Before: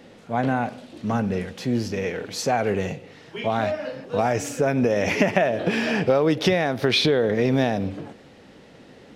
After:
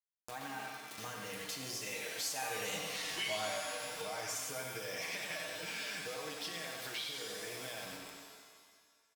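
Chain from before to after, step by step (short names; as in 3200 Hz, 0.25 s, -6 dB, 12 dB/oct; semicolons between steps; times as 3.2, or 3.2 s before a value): Doppler pass-by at 3.04, 19 m/s, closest 2.4 m; pre-emphasis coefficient 0.9; comb 6.4 ms, depth 85%; bit-crush 12-bit; on a send: dark delay 93 ms, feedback 38%, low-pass 3100 Hz, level -5 dB; on the sum: upward compressor, threshold -51 dBFS; low shelf 430 Hz -8.5 dB; compressor 3:1, threshold -56 dBFS, peak gain reduction 10.5 dB; shimmer reverb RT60 1.5 s, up +7 st, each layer -2 dB, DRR 5 dB; gain +16.5 dB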